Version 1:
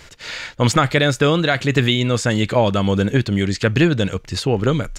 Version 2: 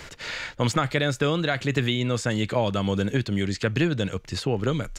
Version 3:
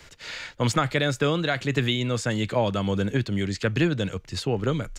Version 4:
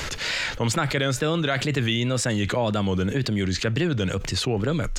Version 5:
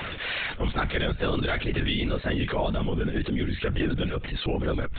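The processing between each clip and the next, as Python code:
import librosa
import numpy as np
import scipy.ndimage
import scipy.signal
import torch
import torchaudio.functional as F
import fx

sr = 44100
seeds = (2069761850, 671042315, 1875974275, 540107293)

y1 = fx.band_squash(x, sr, depth_pct=40)
y1 = F.gain(torch.from_numpy(y1), -7.5).numpy()
y2 = fx.band_widen(y1, sr, depth_pct=40)
y3 = fx.wow_flutter(y2, sr, seeds[0], rate_hz=2.1, depth_cents=110.0)
y3 = fx.env_flatten(y3, sr, amount_pct=70)
y3 = F.gain(torch.from_numpy(y3), -3.0).numpy()
y4 = fx.lpc_vocoder(y3, sr, seeds[1], excitation='whisper', order=16)
y4 = F.gain(torch.from_numpy(y4), -2.5).numpy()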